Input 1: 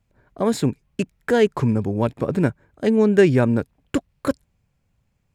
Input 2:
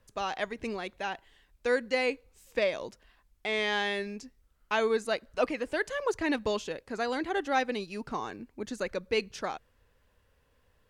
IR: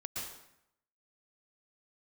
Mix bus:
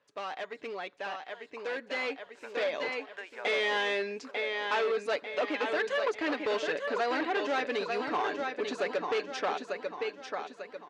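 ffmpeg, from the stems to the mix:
-filter_complex "[0:a]highpass=f=690:w=0.5412,highpass=f=690:w=1.3066,acompressor=threshold=0.0501:ratio=6,volume=0.106,asplit=2[s0][s1];[s1]volume=0.15[s2];[1:a]aecho=1:1:6.9:0.45,acompressor=threshold=0.0398:ratio=10,volume=0.841,asplit=3[s3][s4][s5];[s4]volume=0.447[s6];[s5]apad=whole_len=235763[s7];[s0][s7]sidechaincompress=threshold=0.00282:ratio=8:attack=16:release=262[s8];[s2][s6]amix=inputs=2:normalize=0,aecho=0:1:895|1790|2685|3580|4475|5370:1|0.44|0.194|0.0852|0.0375|0.0165[s9];[s8][s3][s9]amix=inputs=3:normalize=0,asoftclip=type=hard:threshold=0.0251,highpass=350,lowpass=4100,dynaudnorm=f=480:g=9:m=2.37"

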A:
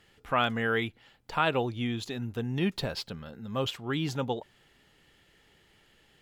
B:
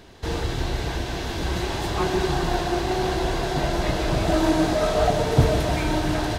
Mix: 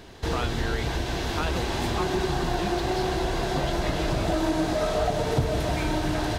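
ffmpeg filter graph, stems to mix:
-filter_complex "[0:a]volume=0.75[s0];[1:a]volume=1.19[s1];[s0][s1]amix=inputs=2:normalize=0,acompressor=threshold=0.0631:ratio=2.5"

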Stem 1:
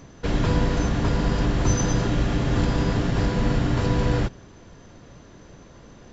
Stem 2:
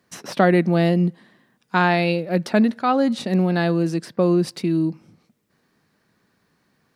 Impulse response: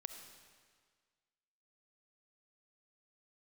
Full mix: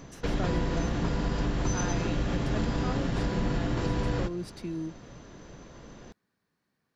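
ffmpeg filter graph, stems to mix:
-filter_complex "[0:a]equalizer=f=90:t=o:w=0.39:g=-6.5,volume=0.75,asplit=2[s0][s1];[s1]volume=0.422[s2];[1:a]volume=0.2[s3];[2:a]atrim=start_sample=2205[s4];[s2][s4]afir=irnorm=-1:irlink=0[s5];[s0][s3][s5]amix=inputs=3:normalize=0,acompressor=threshold=0.0355:ratio=2"

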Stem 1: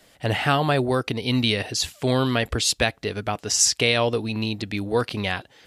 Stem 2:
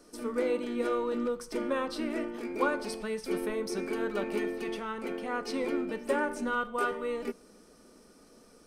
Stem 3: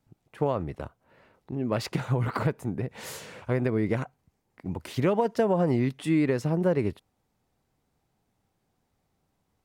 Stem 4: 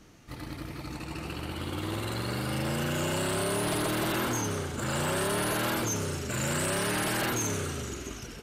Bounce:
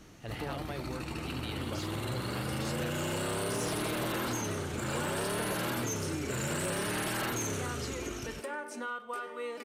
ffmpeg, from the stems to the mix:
-filter_complex "[0:a]volume=0.126[s0];[1:a]alimiter=level_in=1.26:limit=0.0631:level=0:latency=1:release=280,volume=0.794,highpass=f=750:p=1,adelay=2350,volume=1.33[s1];[2:a]volume=0.266[s2];[3:a]bandreject=f=4900:w=27,volume=1.12[s3];[s0][s1][s2][s3]amix=inputs=4:normalize=0,asoftclip=type=tanh:threshold=0.112,acompressor=threshold=0.0178:ratio=2"

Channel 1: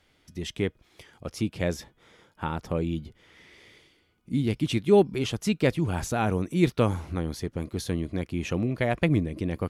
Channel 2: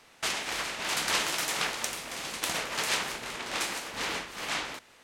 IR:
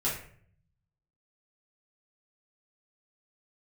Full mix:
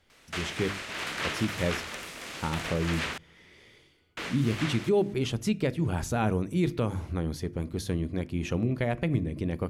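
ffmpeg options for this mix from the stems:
-filter_complex "[0:a]lowshelf=f=370:g=3.5,bandreject=f=50:t=h:w=6,bandreject=f=100:t=h:w=6,bandreject=f=150:t=h:w=6,bandreject=f=200:t=h:w=6,bandreject=f=250:t=h:w=6,bandreject=f=300:t=h:w=6,bandreject=f=350:t=h:w=6,volume=0.708,asplit=2[s0][s1];[s1]volume=0.0631[s2];[1:a]acrossover=split=3200[s3][s4];[s4]acompressor=threshold=0.00708:ratio=4:attack=1:release=60[s5];[s3][s5]amix=inputs=2:normalize=0,equalizer=f=840:w=1.9:g=-6,adelay=100,volume=0.944,asplit=3[s6][s7][s8];[s6]atrim=end=3.18,asetpts=PTS-STARTPTS,afade=t=out:st=3.176:d=0.004:c=hsin[s9];[s7]atrim=start=3.18:end=4.17,asetpts=PTS-STARTPTS,volume=0[s10];[s8]atrim=start=4.17,asetpts=PTS-STARTPTS,afade=t=in:d=0.004:c=hsin[s11];[s9][s10][s11]concat=n=3:v=0:a=1[s12];[2:a]atrim=start_sample=2205[s13];[s2][s13]afir=irnorm=-1:irlink=0[s14];[s0][s12][s14]amix=inputs=3:normalize=0,alimiter=limit=0.15:level=0:latency=1:release=168"

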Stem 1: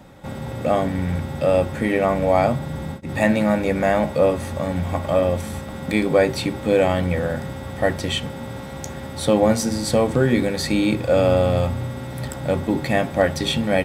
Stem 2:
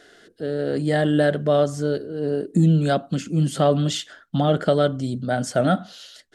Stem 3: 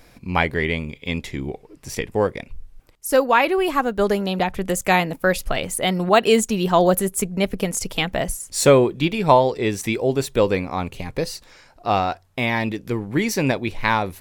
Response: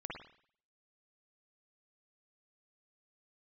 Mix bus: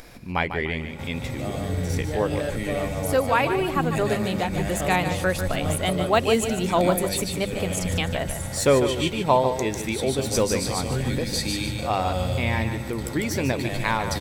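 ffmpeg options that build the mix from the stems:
-filter_complex "[0:a]acrossover=split=120|3000[s0][s1][s2];[s1]acompressor=threshold=0.00708:ratio=2[s3];[s0][s3][s2]amix=inputs=3:normalize=0,adelay=750,volume=1.12,asplit=2[s4][s5];[s5]volume=0.631[s6];[1:a]adelay=1200,volume=0.266[s7];[2:a]bandreject=f=50:t=h:w=6,bandreject=f=100:t=h:w=6,bandreject=f=150:t=h:w=6,bandreject=f=200:t=h:w=6,acompressor=mode=upward:threshold=0.0282:ratio=2.5,volume=0.562,asplit=3[s8][s9][s10];[s9]volume=0.355[s11];[s10]apad=whole_len=643567[s12];[s4][s12]sidechaincompress=threshold=0.0316:ratio=8:attack=5.2:release=125[s13];[s6][s11]amix=inputs=2:normalize=0,aecho=0:1:148|296|444|592|740:1|0.35|0.122|0.0429|0.015[s14];[s13][s7][s8][s14]amix=inputs=4:normalize=0"

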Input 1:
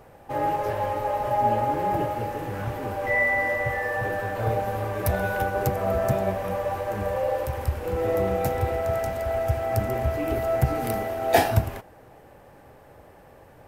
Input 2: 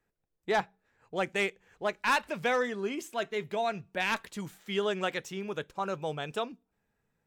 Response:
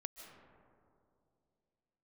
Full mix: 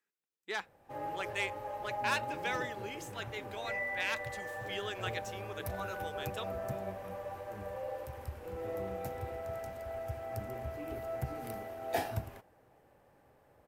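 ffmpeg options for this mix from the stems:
-filter_complex "[0:a]adelay=600,volume=0.188[s0];[1:a]highpass=420,equalizer=f=660:t=o:w=1.1:g=-12.5,volume=0.668[s1];[s0][s1]amix=inputs=2:normalize=0,lowshelf=f=60:g=-5"

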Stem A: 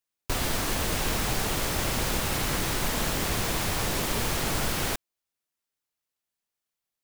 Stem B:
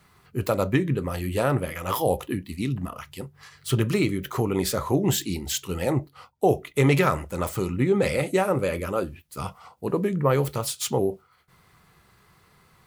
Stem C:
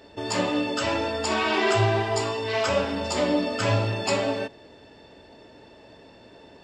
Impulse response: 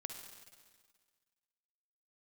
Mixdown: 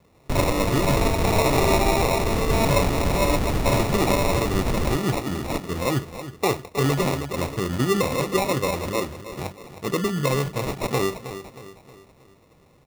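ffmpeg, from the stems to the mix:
-filter_complex "[0:a]lowpass=f=1600:t=q:w=12,volume=1.06[s0];[1:a]highshelf=f=7200:g=9,volume=1.06,asplit=3[s1][s2][s3];[s2]volume=0.237[s4];[2:a]highpass=f=320:w=0.5412,highpass=f=320:w=1.3066,volume=1.26[s5];[s3]apad=whole_len=292724[s6];[s5][s6]sidechaingate=range=0.0224:threshold=0.00562:ratio=16:detection=peak[s7];[s0][s1]amix=inputs=2:normalize=0,lowpass=8000,alimiter=limit=0.266:level=0:latency=1:release=230,volume=1[s8];[s4]aecho=0:1:315|630|945|1260|1575|1890:1|0.44|0.194|0.0852|0.0375|0.0165[s9];[s7][s8][s9]amix=inputs=3:normalize=0,acrusher=samples=28:mix=1:aa=0.000001"

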